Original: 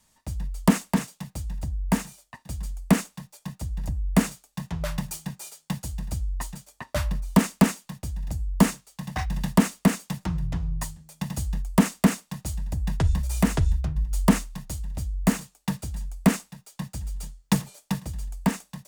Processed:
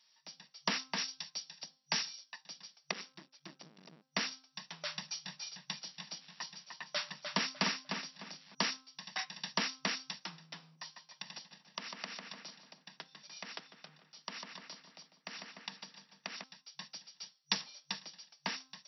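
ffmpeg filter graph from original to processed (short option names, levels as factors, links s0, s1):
-filter_complex "[0:a]asettb=1/sr,asplit=3[s0][s1][s2];[s0]atrim=end=0.984[s3];[s1]atrim=start=0.98:end=2.41,asetpts=PTS-STARTPTS,afade=t=in:d=0.004:c=qsin,afade=t=out:st=1.426:d=0.004:c=qsin,highshelf=f=4200:g=11,afreqshift=-23[s4];[s2]atrim=start=2.406[s5];[s3][s4]acrossfade=d=0.004:c1=hsin:c2=qsin[s6];[s6][s5]acrossfade=d=0.004:c1=qsin:c2=hsin,asettb=1/sr,asplit=3[s7][s8][s9];[s7]atrim=end=2.914[s10];[s8]atrim=start=2.91:end=4.02,asetpts=PTS-STARTPTS,afade=t=in:d=0.004:c=qsin,afade=t=out:st=1.106:d=0.004:c=qsin,bass=f=250:g=15,treble=f=4000:g=-4,acompressor=threshold=0.158:ratio=6:attack=3.2:release=140:knee=1:detection=peak,aeval=exprs='max(val(0),0)':c=same[s11];[s9]atrim=start=4.016[s12];[s10][s11]acrossfade=d=0.004:c1=hsin:c2=qsin[s13];[s13][s12]acrossfade=d=0.004:c1=qsin:c2=hsin,asettb=1/sr,asplit=3[s14][s15][s16];[s14]atrim=end=4.954[s17];[s15]atrim=start=4.95:end=8.55,asetpts=PTS-STARTPTS,afade=t=in:d=0.004:c=qsin,afade=t=out:st=3.596:d=0.004:c=qsin,equalizer=f=120:w=1.9:g=9,acrusher=bits=8:mode=log:mix=0:aa=0.000001,asplit=2[s18][s19];[s19]adelay=301,lowpass=f=4100:p=1,volume=0.562,asplit=2[s20][s21];[s21]adelay=301,lowpass=f=4100:p=1,volume=0.3,asplit=2[s22][s23];[s23]adelay=301,lowpass=f=4100:p=1,volume=0.3,asplit=2[s24][s25];[s25]adelay=301,lowpass=f=4100:p=1,volume=0.3[s26];[s18][s20][s22][s24][s26]amix=inputs=5:normalize=0,atrim=end_sample=158760[s27];[s16]atrim=start=8.546[s28];[s17][s27]acrossfade=d=0.004:c1=hsin:c2=qsin[s29];[s29][s28]acrossfade=d=0.004:c1=qsin:c2=hsin,asettb=1/sr,asplit=3[s30][s31][s32];[s30]atrim=end=10.754[s33];[s31]atrim=start=10.75:end=16.44,asetpts=PTS-STARTPTS,afade=t=in:d=0.004:c=qsin,afade=t=out:st=5.686:d=0.004:c=qsin,highshelf=f=8100:g=-11,asplit=2[s34][s35];[s35]adelay=148,lowpass=f=4000:p=1,volume=0.355,asplit=2[s36][s37];[s37]adelay=148,lowpass=f=4000:p=1,volume=0.53,asplit=2[s38][s39];[s39]adelay=148,lowpass=f=4000:p=1,volume=0.53,asplit=2[s40][s41];[s41]adelay=148,lowpass=f=4000:p=1,volume=0.53,asplit=2[s42][s43];[s43]adelay=148,lowpass=f=4000:p=1,volume=0.53,asplit=2[s44][s45];[s45]adelay=148,lowpass=f=4000:p=1,volume=0.53[s46];[s34][s36][s38][s40][s42][s44][s46]amix=inputs=7:normalize=0,atrim=end_sample=250929,acompressor=threshold=0.0355:ratio=4:attack=3.2:release=140:knee=1:detection=peak[s47];[s32]atrim=start=16.436[s48];[s33][s47]acrossfade=d=0.004:c1=hsin:c2=qsin[s49];[s49][s48]acrossfade=d=0.004:c1=qsin:c2=hsin,bandreject=f=262:t=h:w=4,bandreject=f=524:t=h:w=4,bandreject=f=786:t=h:w=4,bandreject=f=1048:t=h:w=4,bandreject=f=1310:t=h:w=4,bandreject=f=1572:t=h:w=4,afftfilt=real='re*between(b*sr/4096,140,5800)':imag='im*between(b*sr/4096,140,5800)':win_size=4096:overlap=0.75,aderivative,volume=2.24"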